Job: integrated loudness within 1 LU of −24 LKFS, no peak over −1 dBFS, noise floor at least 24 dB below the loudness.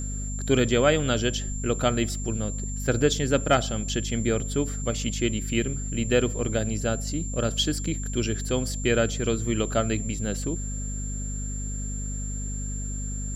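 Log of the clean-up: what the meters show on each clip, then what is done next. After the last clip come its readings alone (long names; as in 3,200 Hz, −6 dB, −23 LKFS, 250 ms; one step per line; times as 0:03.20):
mains hum 50 Hz; hum harmonics up to 250 Hz; level of the hum −29 dBFS; interfering tone 7,300 Hz; level of the tone −36 dBFS; integrated loudness −26.5 LKFS; sample peak −8.0 dBFS; target loudness −24.0 LKFS
→ hum removal 50 Hz, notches 5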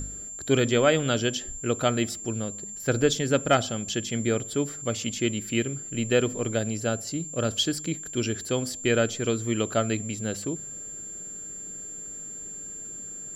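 mains hum none found; interfering tone 7,300 Hz; level of the tone −36 dBFS
→ notch filter 7,300 Hz, Q 30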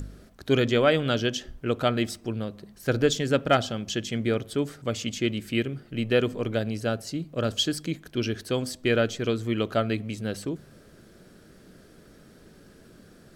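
interfering tone none found; integrated loudness −27.0 LKFS; sample peak −9.0 dBFS; target loudness −24.0 LKFS
→ level +3 dB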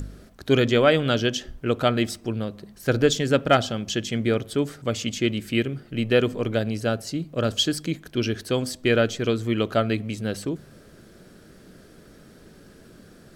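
integrated loudness −24.0 LKFS; sample peak −6.0 dBFS; background noise floor −50 dBFS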